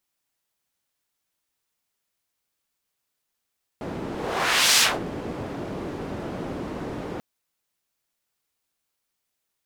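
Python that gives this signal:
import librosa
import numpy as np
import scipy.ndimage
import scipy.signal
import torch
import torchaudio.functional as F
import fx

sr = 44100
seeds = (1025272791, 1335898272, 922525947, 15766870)

y = fx.whoosh(sr, seeds[0], length_s=3.39, peak_s=0.98, rise_s=0.73, fall_s=0.23, ends_hz=320.0, peak_hz=4900.0, q=0.82, swell_db=15.0)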